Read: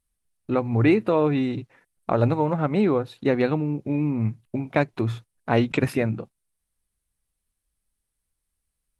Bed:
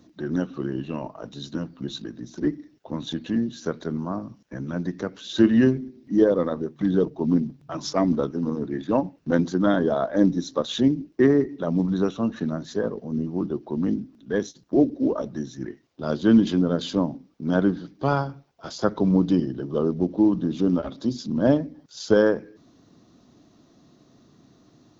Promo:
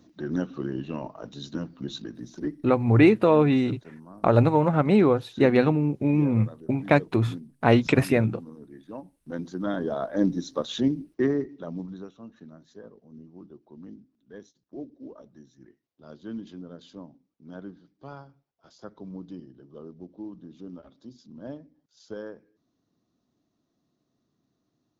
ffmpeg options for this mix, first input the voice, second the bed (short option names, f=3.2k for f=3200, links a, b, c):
-filter_complex "[0:a]adelay=2150,volume=2dB[a];[1:a]volume=11dB,afade=t=out:st=2.27:d=0.43:silence=0.177828,afade=t=in:st=9.15:d=1.11:silence=0.211349,afade=t=out:st=10.96:d=1.13:silence=0.158489[b];[a][b]amix=inputs=2:normalize=0"